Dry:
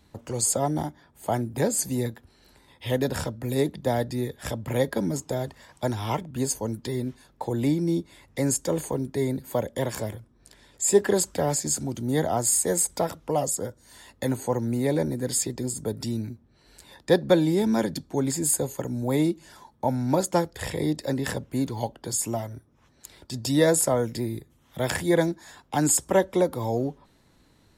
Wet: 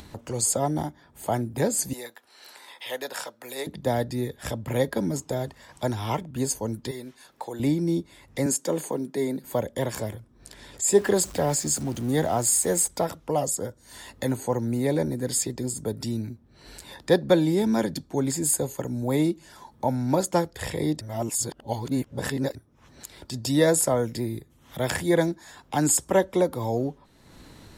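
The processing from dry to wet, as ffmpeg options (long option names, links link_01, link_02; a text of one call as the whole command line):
ffmpeg -i in.wav -filter_complex "[0:a]asettb=1/sr,asplit=3[link_01][link_02][link_03];[link_01]atrim=end=1.934[link_04];[link_02]atrim=start=1.93:end=3.67,asetpts=PTS-STARTPTS,afade=type=in:duration=0.004:curve=qsin,afade=type=out:start_time=1.736:duration=0.004:curve=qsin,highpass=720[link_05];[link_03]atrim=start=3.666[link_06];[link_04][link_05]acrossfade=duration=0.004:curve1=hsin:curve2=qsin[link_07];[link_07][link_06]acrossfade=duration=0.004:curve1=qsin:curve2=hsin,asettb=1/sr,asplit=3[link_08][link_09][link_10];[link_08]atrim=end=6.914[link_11];[link_09]atrim=start=6.91:end=7.6,asetpts=PTS-STARTPTS,afade=type=in:duration=0.004:curve=qsin,afade=type=out:start_time=0.686:duration=0.004:curve=qsin,highpass=frequency=770:poles=1[link_12];[link_10]atrim=start=7.596[link_13];[link_11][link_12]acrossfade=duration=0.004:curve1=hsin:curve2=qsin[link_14];[link_14][link_13]acrossfade=duration=0.004:curve1=qsin:curve2=hsin,asettb=1/sr,asplit=3[link_15][link_16][link_17];[link_15]atrim=end=8.464[link_18];[link_16]atrim=start=8.46:end=9.44,asetpts=PTS-STARTPTS,afade=type=in:duration=0.004:curve=qsin,afade=type=out:start_time=0.976:duration=0.004:curve=qsin,highpass=frequency=170:width=0.5412,highpass=frequency=170:width=1.3066[link_19];[link_17]atrim=start=9.436[link_20];[link_18][link_19]acrossfade=duration=0.004:curve1=hsin:curve2=qsin[link_21];[link_21][link_20]acrossfade=duration=0.004:curve1=qsin:curve2=hsin,asettb=1/sr,asplit=3[link_22][link_23][link_24];[link_22]atrim=end=10.984[link_25];[link_23]atrim=start=10.98:end=12.88,asetpts=PTS-STARTPTS,afade=type=in:duration=0.004:curve=qsin,afade=type=out:start_time=1.896:duration=0.004:curve=qsin,aeval=exprs='val(0)+0.5*0.0126*sgn(val(0))':channel_layout=same[link_26];[link_24]atrim=start=12.876[link_27];[link_25][link_26]acrossfade=duration=0.004:curve1=hsin:curve2=qsin[link_28];[link_28][link_27]acrossfade=duration=0.004:curve1=qsin:curve2=hsin,asplit=3[link_29][link_30][link_31];[link_29]atrim=end=21.012[link_32];[link_30]atrim=start=21.008:end=22.552,asetpts=PTS-STARTPTS,areverse[link_33];[link_31]atrim=start=22.548[link_34];[link_32][link_33]acrossfade=duration=0.004:curve1=hsin:curve2=hsin[link_35];[link_35][link_34]acrossfade=duration=0.004:curve1=hsin:curve2=hsin,acompressor=mode=upward:threshold=-35dB:ratio=2.5" out.wav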